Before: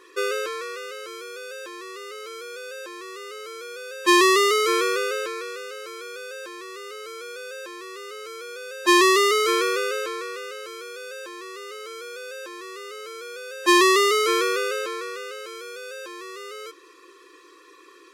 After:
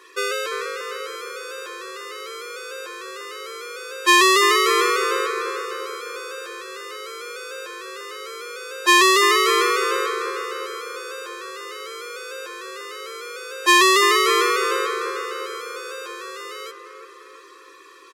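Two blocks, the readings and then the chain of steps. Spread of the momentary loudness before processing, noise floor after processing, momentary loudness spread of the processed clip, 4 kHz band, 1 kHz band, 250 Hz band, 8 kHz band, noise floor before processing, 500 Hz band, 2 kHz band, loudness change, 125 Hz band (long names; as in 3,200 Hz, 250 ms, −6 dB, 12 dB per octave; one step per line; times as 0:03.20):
20 LU, −45 dBFS, 19 LU, +4.5 dB, +4.5 dB, −2.0 dB, +4.0 dB, −51 dBFS, 0.0 dB, +4.5 dB, +2.5 dB, can't be measured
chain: Bessel high-pass filter 560 Hz, order 2
double-tracking delay 13 ms −13 dB
on a send: bucket-brigade delay 346 ms, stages 4,096, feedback 56%, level −6 dB
on the sum: level +4 dB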